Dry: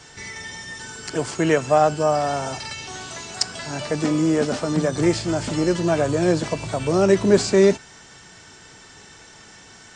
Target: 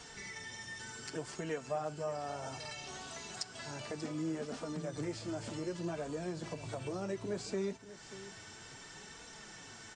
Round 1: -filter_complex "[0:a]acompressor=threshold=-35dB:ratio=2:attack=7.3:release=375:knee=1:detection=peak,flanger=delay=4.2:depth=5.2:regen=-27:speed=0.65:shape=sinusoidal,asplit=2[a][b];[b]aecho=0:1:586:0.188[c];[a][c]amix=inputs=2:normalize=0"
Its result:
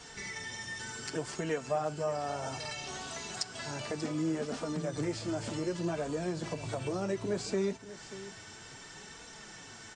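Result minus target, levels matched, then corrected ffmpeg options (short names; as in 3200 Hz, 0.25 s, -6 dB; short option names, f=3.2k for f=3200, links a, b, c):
compressor: peak gain reduction -5 dB
-filter_complex "[0:a]acompressor=threshold=-45dB:ratio=2:attack=7.3:release=375:knee=1:detection=peak,flanger=delay=4.2:depth=5.2:regen=-27:speed=0.65:shape=sinusoidal,asplit=2[a][b];[b]aecho=0:1:586:0.188[c];[a][c]amix=inputs=2:normalize=0"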